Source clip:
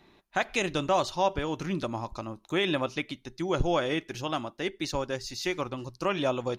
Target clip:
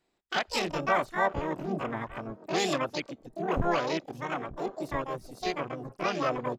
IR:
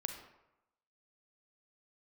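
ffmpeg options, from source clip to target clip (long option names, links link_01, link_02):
-filter_complex "[0:a]asplit=2[link_01][link_02];[link_02]adelay=919,lowpass=frequency=930:poles=1,volume=-17dB,asplit=2[link_03][link_04];[link_04]adelay=919,lowpass=frequency=930:poles=1,volume=0.51,asplit=2[link_05][link_06];[link_06]adelay=919,lowpass=frequency=930:poles=1,volume=0.51,asplit=2[link_07][link_08];[link_08]adelay=919,lowpass=frequency=930:poles=1,volume=0.51[link_09];[link_01][link_03][link_05][link_07][link_09]amix=inputs=5:normalize=0,afwtdn=0.02,asplit=3[link_10][link_11][link_12];[link_11]asetrate=52444,aresample=44100,atempo=0.840896,volume=-5dB[link_13];[link_12]asetrate=88200,aresample=44100,atempo=0.5,volume=-1dB[link_14];[link_10][link_13][link_14]amix=inputs=3:normalize=0,volume=-4dB"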